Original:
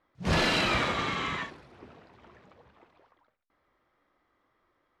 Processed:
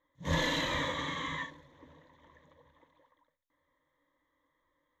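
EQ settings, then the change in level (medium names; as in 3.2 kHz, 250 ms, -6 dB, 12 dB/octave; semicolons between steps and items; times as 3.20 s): rippled EQ curve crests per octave 1.1, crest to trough 15 dB; -8.0 dB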